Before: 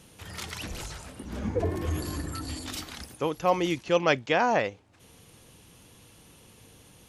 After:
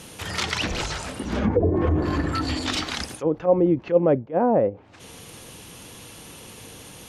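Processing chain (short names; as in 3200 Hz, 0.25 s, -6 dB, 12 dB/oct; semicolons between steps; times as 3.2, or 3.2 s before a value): dynamic EQ 540 Hz, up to +6 dB, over -41 dBFS, Q 7.5; treble ducked by the level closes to 410 Hz, closed at -23 dBFS; low shelf 170 Hz -6.5 dB; in parallel at 0 dB: limiter -25.5 dBFS, peak gain reduction 10 dB; on the sum: attack slew limiter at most 290 dB/s; gain +7 dB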